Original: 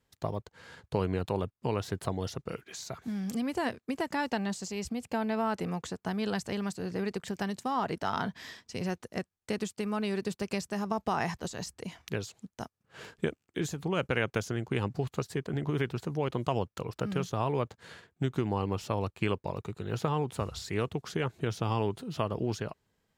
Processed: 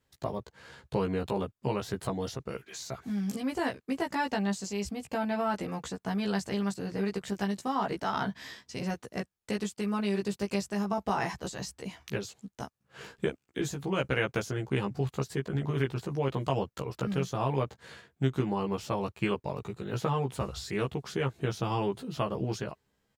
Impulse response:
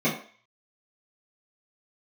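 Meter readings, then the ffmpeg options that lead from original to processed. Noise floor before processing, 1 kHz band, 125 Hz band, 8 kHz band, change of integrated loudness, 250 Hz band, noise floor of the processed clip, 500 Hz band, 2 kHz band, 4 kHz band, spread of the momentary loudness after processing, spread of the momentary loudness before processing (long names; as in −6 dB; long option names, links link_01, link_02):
−83 dBFS, +0.5 dB, +0.5 dB, +0.5 dB, +1.0 dB, +1.5 dB, −79 dBFS, +0.5 dB, +0.5 dB, +0.5 dB, 9 LU, 9 LU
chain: -filter_complex "[0:a]asplit=2[link_01][link_02];[link_02]adelay=15,volume=-2dB[link_03];[link_01][link_03]amix=inputs=2:normalize=0,volume=-1.5dB"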